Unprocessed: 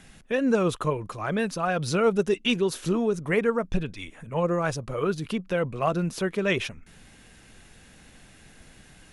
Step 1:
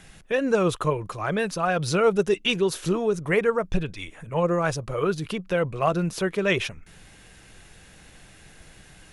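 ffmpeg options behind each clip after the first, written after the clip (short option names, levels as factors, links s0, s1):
-af "equalizer=f=240:w=4.4:g=-8.5,volume=1.33"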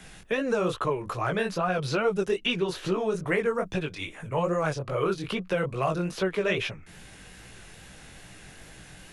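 -filter_complex "[0:a]flanger=delay=15.5:depth=7.4:speed=2.4,acrossover=split=81|350|4400[s0][s1][s2][s3];[s0]acompressor=threshold=0.00178:ratio=4[s4];[s1]acompressor=threshold=0.0126:ratio=4[s5];[s2]acompressor=threshold=0.0282:ratio=4[s6];[s3]acompressor=threshold=0.00158:ratio=4[s7];[s4][s5][s6][s7]amix=inputs=4:normalize=0,volume=1.88"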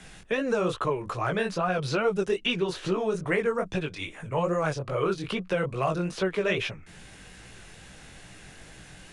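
-af "aresample=22050,aresample=44100"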